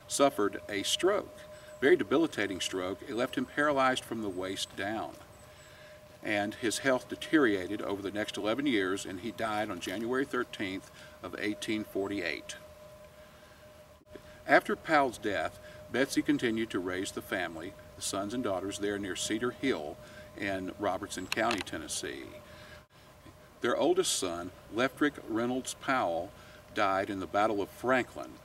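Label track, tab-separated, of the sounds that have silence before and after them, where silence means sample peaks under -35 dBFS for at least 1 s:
6.250000	12.520000	sound
14.160000	22.220000	sound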